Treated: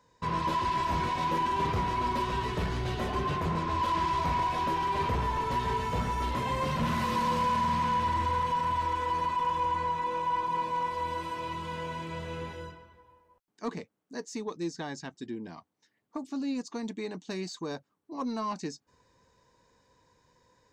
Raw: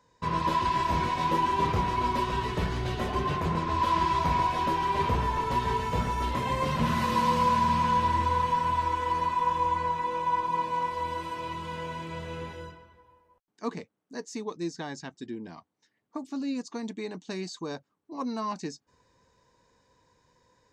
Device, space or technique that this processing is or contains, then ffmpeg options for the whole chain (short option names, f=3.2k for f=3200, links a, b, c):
saturation between pre-emphasis and de-emphasis: -af "highshelf=f=3k:g=11,asoftclip=type=tanh:threshold=-22dB,highshelf=f=3k:g=-11"